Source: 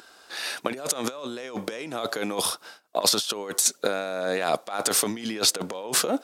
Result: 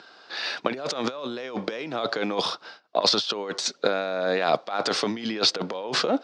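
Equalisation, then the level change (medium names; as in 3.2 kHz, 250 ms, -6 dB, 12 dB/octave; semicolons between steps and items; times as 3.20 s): elliptic band-pass 120–4800 Hz, stop band 50 dB; +2.5 dB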